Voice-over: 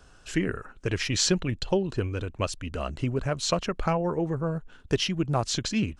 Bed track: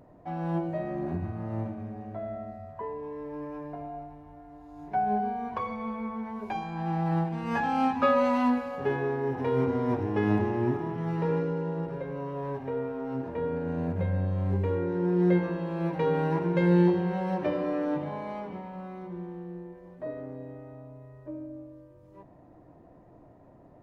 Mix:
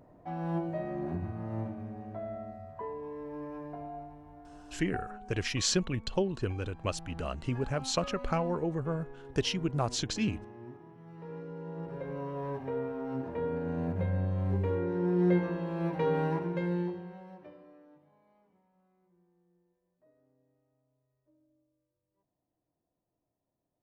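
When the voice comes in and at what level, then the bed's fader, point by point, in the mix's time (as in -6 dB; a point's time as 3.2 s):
4.45 s, -4.5 dB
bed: 4.73 s -3 dB
5.15 s -20 dB
11.08 s -20 dB
12.09 s -2.5 dB
16.25 s -2.5 dB
18.02 s -31.5 dB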